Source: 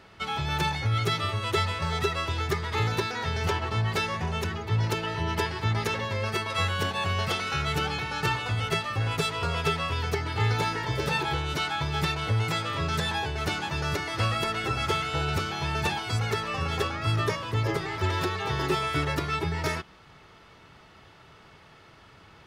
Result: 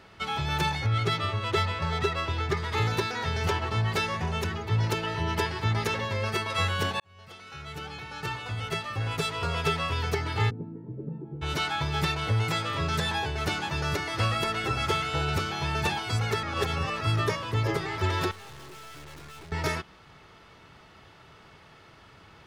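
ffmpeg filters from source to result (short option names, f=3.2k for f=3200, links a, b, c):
-filter_complex "[0:a]asettb=1/sr,asplit=3[a][b][c];[a]atrim=end=0.864[d];[b]atrim=start=0.86:end=2.57,asetpts=PTS-STARTPTS,afade=t=in:d=0.004:c=qsin,afade=t=out:st=1.706:d=0.004:c=qsin,adynamicsmooth=sensitivity=3.5:basefreq=4.6k[e];[c]atrim=start=2.566[f];[d][e]acrossfade=d=0.004:c1=hsin:c2=qsin[g];[g][f]acrossfade=d=0.004:c1=qsin:c2=hsin,asplit=3[h][i][j];[h]afade=t=out:st=10.49:d=0.02[k];[i]asuperpass=centerf=220:order=4:qfactor=1.3,afade=t=in:st=10.49:d=0.02,afade=t=out:st=11.41:d=0.02[l];[j]afade=t=in:st=11.41:d=0.02[m];[k][l][m]amix=inputs=3:normalize=0,asettb=1/sr,asplit=3[n][o][p];[n]atrim=end=18.314[q];[o]atrim=start=18.31:end=19.52,asetpts=PTS-STARTPTS,afade=t=in:d=0.004:c=qsin,afade=t=out:st=1.206:d=0.004:c=qsin,aeval=exprs='(tanh(178*val(0)+0.55)-tanh(0.55))/178':c=same[r];[p]atrim=start=19.516[s];[q][r]acrossfade=d=0.004:c1=hsin:c2=qsin[t];[t][s]acrossfade=d=0.004:c1=qsin:c2=hsin,asplit=4[u][v][w][x];[u]atrim=end=7,asetpts=PTS-STARTPTS,afade=t=out:st=6.996:d=0.004:c=hsin[y];[v]atrim=start=7:end=16.432,asetpts=PTS-STARTPTS,afade=t=in:d=2.78[z];[w]atrim=start=16.428:end=17.012,asetpts=PTS-STARTPTS,areverse[aa];[x]atrim=start=17.008[ab];[y][z]concat=n=2:v=0:a=1[ac];[ac][aa]acrossfade=d=0.004:c1=hsin:c2=hsin[ad];[ad][ab]acrossfade=d=0.004:c1=hsin:c2=hsin"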